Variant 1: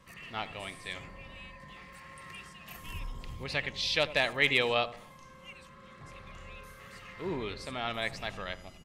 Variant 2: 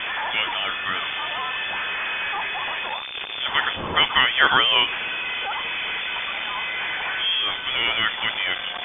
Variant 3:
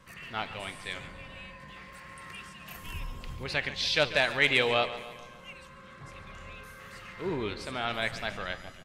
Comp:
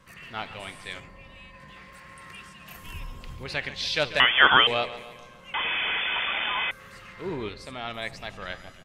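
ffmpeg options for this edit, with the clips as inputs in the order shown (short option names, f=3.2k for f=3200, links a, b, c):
-filter_complex "[0:a]asplit=2[a][b];[1:a]asplit=2[c][d];[2:a]asplit=5[e][f][g][h][i];[e]atrim=end=1.002[j];[a]atrim=start=0.998:end=1.542[k];[f]atrim=start=1.538:end=4.202[l];[c]atrim=start=4.198:end=4.672[m];[g]atrim=start=4.668:end=5.542[n];[d]atrim=start=5.538:end=6.712[o];[h]atrim=start=6.708:end=7.492[p];[b]atrim=start=7.488:end=8.422[q];[i]atrim=start=8.418[r];[j][k]acrossfade=d=0.004:c1=hsin:c2=hsin[s];[s][l]acrossfade=d=0.004:c1=hsin:c2=hsin[t];[t][m]acrossfade=d=0.004:c1=hsin:c2=hsin[u];[u][n]acrossfade=d=0.004:c1=hsin:c2=hsin[v];[v][o]acrossfade=d=0.004:c1=hsin:c2=hsin[w];[w][p]acrossfade=d=0.004:c1=hsin:c2=hsin[x];[x][q]acrossfade=d=0.004:c1=hsin:c2=hsin[y];[y][r]acrossfade=d=0.004:c1=hsin:c2=hsin"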